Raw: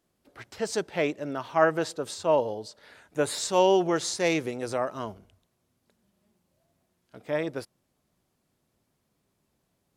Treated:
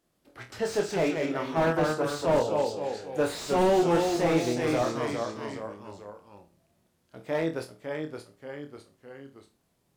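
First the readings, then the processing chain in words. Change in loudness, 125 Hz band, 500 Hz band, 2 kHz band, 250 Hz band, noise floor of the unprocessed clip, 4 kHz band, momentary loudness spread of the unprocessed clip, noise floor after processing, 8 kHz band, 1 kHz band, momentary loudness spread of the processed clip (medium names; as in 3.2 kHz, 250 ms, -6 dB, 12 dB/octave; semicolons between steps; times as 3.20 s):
-0.5 dB, +5.0 dB, +0.5 dB, -0.5 dB, +3.0 dB, -76 dBFS, -2.0 dB, 15 LU, -72 dBFS, -5.0 dB, 0.0 dB, 19 LU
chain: flutter echo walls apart 4.2 m, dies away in 0.25 s; ever faster or slower copies 122 ms, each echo -1 st, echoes 3, each echo -6 dB; slew-rate limiter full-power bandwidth 66 Hz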